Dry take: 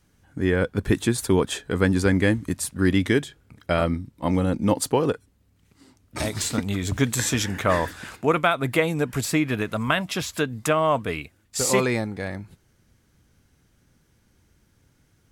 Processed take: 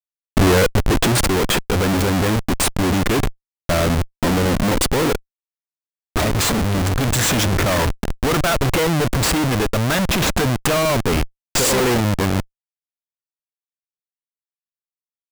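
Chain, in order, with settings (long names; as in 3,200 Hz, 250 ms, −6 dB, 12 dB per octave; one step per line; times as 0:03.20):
comparator with hysteresis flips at −30 dBFS
speech leveller 2 s
level +8 dB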